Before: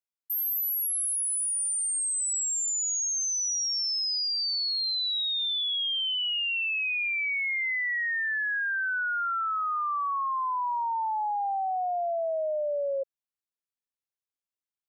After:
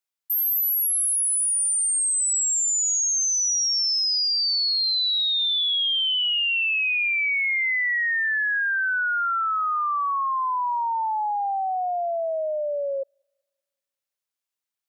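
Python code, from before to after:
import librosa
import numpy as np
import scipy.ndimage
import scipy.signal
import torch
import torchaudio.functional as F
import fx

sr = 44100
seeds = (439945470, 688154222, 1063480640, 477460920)

y = fx.low_shelf(x, sr, hz=500.0, db=-8.5)
y = fx.echo_wet_highpass(y, sr, ms=194, feedback_pct=42, hz=2200.0, wet_db=-20.0)
y = F.gain(torch.from_numpy(y), 6.0).numpy()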